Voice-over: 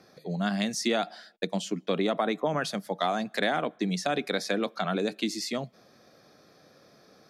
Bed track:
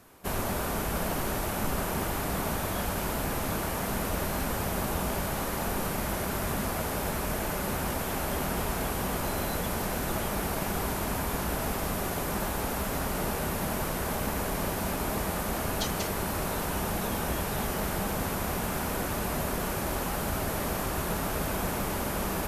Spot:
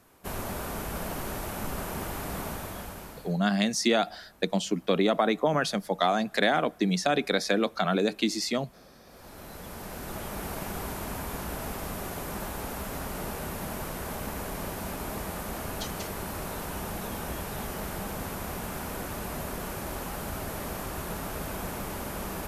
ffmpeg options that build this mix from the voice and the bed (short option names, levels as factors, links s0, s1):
-filter_complex "[0:a]adelay=3000,volume=1.41[s0];[1:a]volume=9.44,afade=t=out:st=2.4:d=0.99:silence=0.0630957,afade=t=in:st=9.05:d=1.45:silence=0.0668344[s1];[s0][s1]amix=inputs=2:normalize=0"